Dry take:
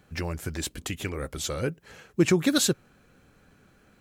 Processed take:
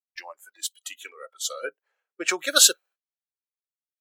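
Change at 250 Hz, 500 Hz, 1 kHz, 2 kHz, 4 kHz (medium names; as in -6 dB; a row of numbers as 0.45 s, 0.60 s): -15.0 dB, -4.5 dB, +4.5 dB, +4.5 dB, +8.0 dB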